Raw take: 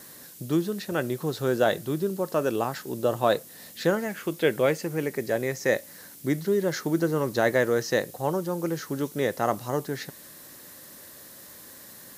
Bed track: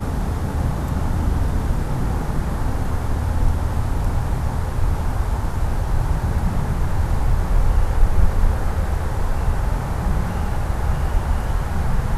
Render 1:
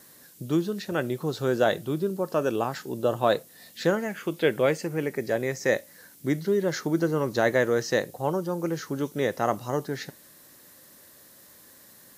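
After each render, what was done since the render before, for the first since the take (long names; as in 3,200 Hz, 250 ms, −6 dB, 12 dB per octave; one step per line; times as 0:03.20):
noise reduction from a noise print 6 dB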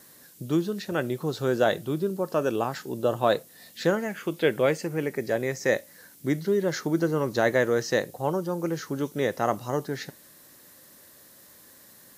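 no processing that can be heard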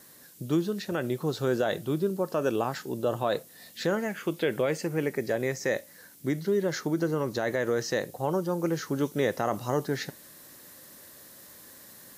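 brickwall limiter −16 dBFS, peak gain reduction 6.5 dB
speech leveller 2 s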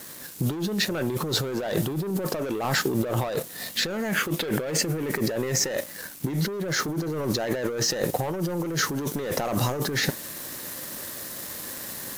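leveller curve on the samples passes 3
compressor whose output falls as the input rises −27 dBFS, ratio −1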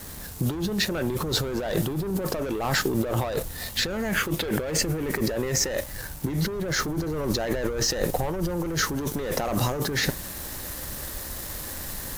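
mix in bed track −20.5 dB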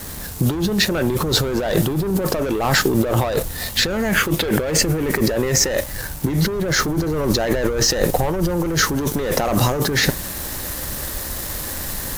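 level +7.5 dB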